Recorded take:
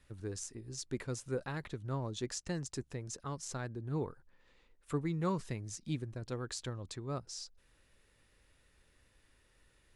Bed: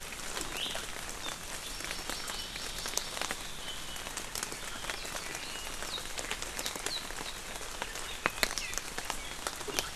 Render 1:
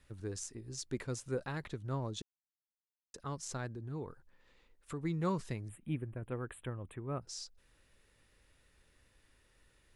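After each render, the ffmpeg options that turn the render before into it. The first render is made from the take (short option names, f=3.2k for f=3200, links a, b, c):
-filter_complex "[0:a]asettb=1/sr,asplit=3[a][b][c];[a]atrim=end=3.714[d];[b]atrim=start=3.71:end=5.03,asetpts=PTS-STARTPTS,afade=t=in:d=0.004:c=qsin,afade=t=out:st=1.316:d=0.004:c=qsin,acompressor=threshold=-41dB:ratio=2:attack=3.2:release=140:knee=1:detection=peak[e];[c]atrim=start=5.026[f];[d][e]acrossfade=d=0.004:c1=hsin:c2=qsin[g];[g][f]acrossfade=d=0.004:c1=qsin:c2=hsin,asettb=1/sr,asplit=3[h][i][j];[h]atrim=end=5.684[k];[i]atrim=start=5.68:end=7.22,asetpts=PTS-STARTPTS,afade=t=in:d=0.004:c=qsin,afade=t=out:st=1.536:d=0.004:c=qsin,asuperstop=centerf=5400:order=8:qfactor=0.88[l];[j]atrim=start=7.216[m];[k][l]acrossfade=d=0.004:c1=hsin:c2=qsin[n];[n][m]acrossfade=d=0.004:c1=qsin:c2=hsin,asplit=3[o][p][q];[o]atrim=end=2.22,asetpts=PTS-STARTPTS,afade=t=out:st=2.216:d=0.004:c=hsin[r];[p]atrim=start=2.22:end=3.14,asetpts=PTS-STARTPTS,volume=0[s];[q]atrim=start=3.14,asetpts=PTS-STARTPTS,afade=t=in:d=0.004:c=hsin[t];[r][s][t]concat=n=3:v=0:a=1"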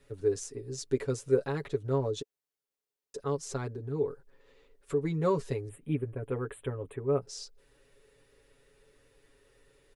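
-af "equalizer=f=440:t=o:w=0.61:g=14,aecho=1:1:7.2:0.82"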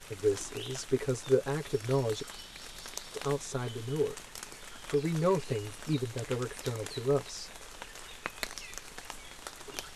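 -filter_complex "[1:a]volume=-7dB[a];[0:a][a]amix=inputs=2:normalize=0"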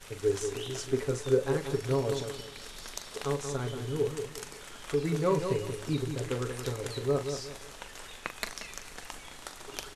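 -filter_complex "[0:a]asplit=2[a][b];[b]adelay=41,volume=-10.5dB[c];[a][c]amix=inputs=2:normalize=0,asplit=2[d][e];[e]adelay=181,lowpass=f=2k:p=1,volume=-7dB,asplit=2[f][g];[g]adelay=181,lowpass=f=2k:p=1,volume=0.33,asplit=2[h][i];[i]adelay=181,lowpass=f=2k:p=1,volume=0.33,asplit=2[j][k];[k]adelay=181,lowpass=f=2k:p=1,volume=0.33[l];[d][f][h][j][l]amix=inputs=5:normalize=0"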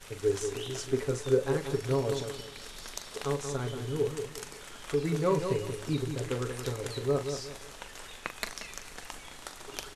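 -af anull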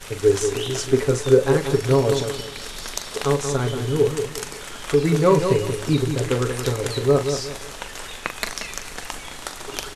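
-af "volume=11dB,alimiter=limit=-3dB:level=0:latency=1"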